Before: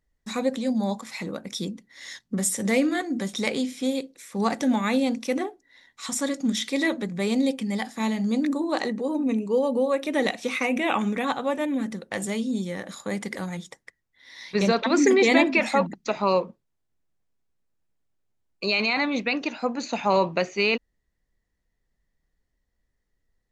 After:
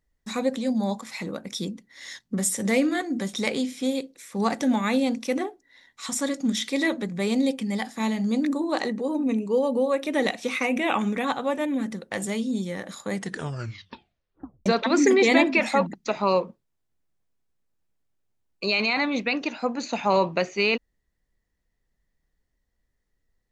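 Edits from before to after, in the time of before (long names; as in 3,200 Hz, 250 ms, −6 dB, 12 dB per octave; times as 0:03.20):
0:13.14: tape stop 1.52 s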